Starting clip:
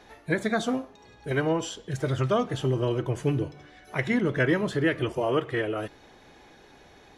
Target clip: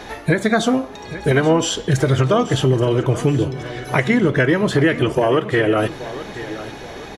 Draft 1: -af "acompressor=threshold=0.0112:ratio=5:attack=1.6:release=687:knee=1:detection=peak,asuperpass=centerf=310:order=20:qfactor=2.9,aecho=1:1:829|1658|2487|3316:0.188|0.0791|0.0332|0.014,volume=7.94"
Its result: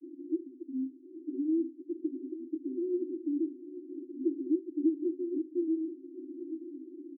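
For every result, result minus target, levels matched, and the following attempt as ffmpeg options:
compression: peak gain reduction +9 dB; 250 Hz band +5.5 dB
-af "acompressor=threshold=0.0398:ratio=5:attack=1.6:release=687:knee=1:detection=peak,asuperpass=centerf=310:order=20:qfactor=2.9,aecho=1:1:829|1658|2487|3316:0.188|0.0791|0.0332|0.014,volume=7.94"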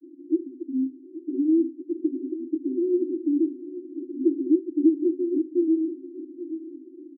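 250 Hz band +5.0 dB
-af "acompressor=threshold=0.0398:ratio=5:attack=1.6:release=687:knee=1:detection=peak,aecho=1:1:829|1658|2487|3316:0.188|0.0791|0.0332|0.014,volume=7.94"

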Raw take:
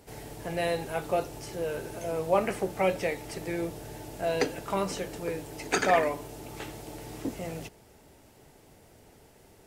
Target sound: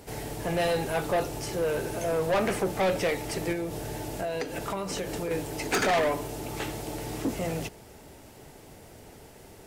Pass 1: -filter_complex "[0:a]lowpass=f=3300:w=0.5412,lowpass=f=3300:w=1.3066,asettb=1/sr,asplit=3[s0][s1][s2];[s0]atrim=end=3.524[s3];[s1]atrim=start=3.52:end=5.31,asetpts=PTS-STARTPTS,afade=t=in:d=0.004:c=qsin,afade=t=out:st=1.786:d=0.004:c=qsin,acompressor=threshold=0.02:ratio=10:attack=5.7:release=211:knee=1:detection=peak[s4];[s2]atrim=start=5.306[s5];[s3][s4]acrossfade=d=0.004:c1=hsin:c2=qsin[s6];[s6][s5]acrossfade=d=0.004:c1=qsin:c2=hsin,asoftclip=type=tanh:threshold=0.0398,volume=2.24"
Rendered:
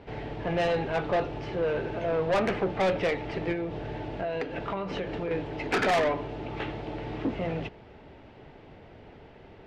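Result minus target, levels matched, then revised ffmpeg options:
4 kHz band -2.5 dB
-filter_complex "[0:a]asettb=1/sr,asplit=3[s0][s1][s2];[s0]atrim=end=3.524[s3];[s1]atrim=start=3.52:end=5.31,asetpts=PTS-STARTPTS,afade=t=in:d=0.004:c=qsin,afade=t=out:st=1.786:d=0.004:c=qsin,acompressor=threshold=0.02:ratio=10:attack=5.7:release=211:knee=1:detection=peak[s4];[s2]atrim=start=5.306[s5];[s3][s4]acrossfade=d=0.004:c1=hsin:c2=qsin[s6];[s6][s5]acrossfade=d=0.004:c1=qsin:c2=hsin,asoftclip=type=tanh:threshold=0.0398,volume=2.24"

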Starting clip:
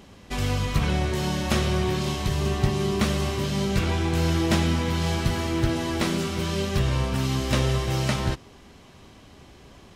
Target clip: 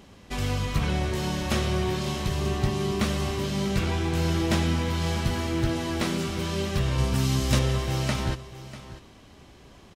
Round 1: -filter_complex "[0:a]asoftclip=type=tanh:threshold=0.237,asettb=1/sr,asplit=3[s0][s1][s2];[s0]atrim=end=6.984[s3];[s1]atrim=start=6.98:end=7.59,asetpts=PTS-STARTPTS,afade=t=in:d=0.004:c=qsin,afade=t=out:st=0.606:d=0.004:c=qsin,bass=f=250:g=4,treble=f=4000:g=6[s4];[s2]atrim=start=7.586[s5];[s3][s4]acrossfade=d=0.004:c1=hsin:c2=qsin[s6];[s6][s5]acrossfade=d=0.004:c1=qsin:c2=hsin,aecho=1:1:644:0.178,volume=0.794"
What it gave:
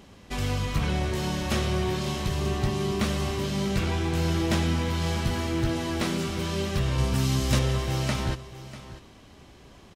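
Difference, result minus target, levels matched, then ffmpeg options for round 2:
saturation: distortion +10 dB
-filter_complex "[0:a]asoftclip=type=tanh:threshold=0.473,asettb=1/sr,asplit=3[s0][s1][s2];[s0]atrim=end=6.984[s3];[s1]atrim=start=6.98:end=7.59,asetpts=PTS-STARTPTS,afade=t=in:d=0.004:c=qsin,afade=t=out:st=0.606:d=0.004:c=qsin,bass=f=250:g=4,treble=f=4000:g=6[s4];[s2]atrim=start=7.586[s5];[s3][s4]acrossfade=d=0.004:c1=hsin:c2=qsin[s6];[s6][s5]acrossfade=d=0.004:c1=qsin:c2=hsin,aecho=1:1:644:0.178,volume=0.794"

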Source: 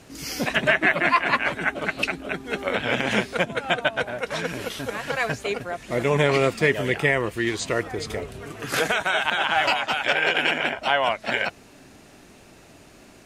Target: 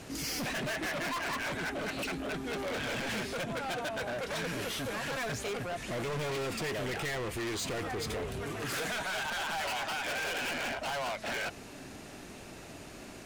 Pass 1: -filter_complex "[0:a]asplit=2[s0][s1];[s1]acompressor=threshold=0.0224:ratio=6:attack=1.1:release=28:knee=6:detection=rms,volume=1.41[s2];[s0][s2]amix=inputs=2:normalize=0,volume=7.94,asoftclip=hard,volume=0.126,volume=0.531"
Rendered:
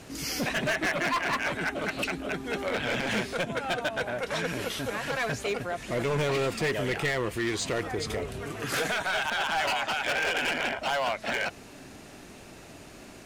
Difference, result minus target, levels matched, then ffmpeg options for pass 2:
overload inside the chain: distortion -6 dB
-filter_complex "[0:a]asplit=2[s0][s1];[s1]acompressor=threshold=0.0224:ratio=6:attack=1.1:release=28:knee=6:detection=rms,volume=1.41[s2];[s0][s2]amix=inputs=2:normalize=0,volume=23.7,asoftclip=hard,volume=0.0422,volume=0.531"

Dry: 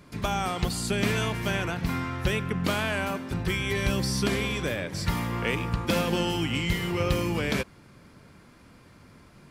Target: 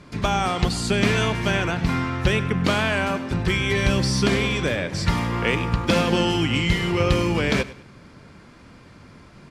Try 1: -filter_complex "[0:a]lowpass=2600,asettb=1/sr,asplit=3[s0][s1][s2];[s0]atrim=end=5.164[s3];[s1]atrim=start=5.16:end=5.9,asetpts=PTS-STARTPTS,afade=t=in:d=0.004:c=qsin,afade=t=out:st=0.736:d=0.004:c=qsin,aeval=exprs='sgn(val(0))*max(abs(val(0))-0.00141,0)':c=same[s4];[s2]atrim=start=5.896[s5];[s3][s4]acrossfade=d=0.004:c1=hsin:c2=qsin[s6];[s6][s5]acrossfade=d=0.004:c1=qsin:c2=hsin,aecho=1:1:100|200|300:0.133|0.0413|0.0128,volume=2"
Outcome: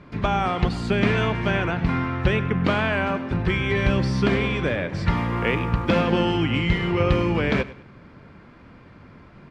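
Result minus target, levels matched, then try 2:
8 kHz band -14.5 dB
-filter_complex "[0:a]lowpass=7400,asettb=1/sr,asplit=3[s0][s1][s2];[s0]atrim=end=5.164[s3];[s1]atrim=start=5.16:end=5.9,asetpts=PTS-STARTPTS,afade=t=in:d=0.004:c=qsin,afade=t=out:st=0.736:d=0.004:c=qsin,aeval=exprs='sgn(val(0))*max(abs(val(0))-0.00141,0)':c=same[s4];[s2]atrim=start=5.896[s5];[s3][s4]acrossfade=d=0.004:c1=hsin:c2=qsin[s6];[s6][s5]acrossfade=d=0.004:c1=qsin:c2=hsin,aecho=1:1:100|200|300:0.133|0.0413|0.0128,volume=2"

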